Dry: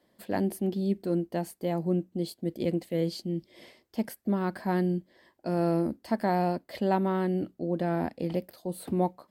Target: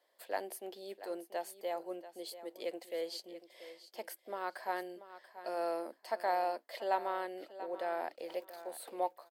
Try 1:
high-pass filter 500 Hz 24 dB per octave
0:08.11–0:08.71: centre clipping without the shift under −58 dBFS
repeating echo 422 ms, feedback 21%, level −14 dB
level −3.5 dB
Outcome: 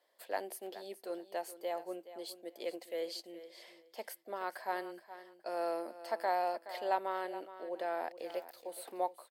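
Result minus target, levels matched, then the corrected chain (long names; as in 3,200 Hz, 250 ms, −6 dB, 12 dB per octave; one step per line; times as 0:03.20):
echo 263 ms early
high-pass filter 500 Hz 24 dB per octave
0:08.11–0:08.71: centre clipping without the shift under −58 dBFS
repeating echo 685 ms, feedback 21%, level −14 dB
level −3.5 dB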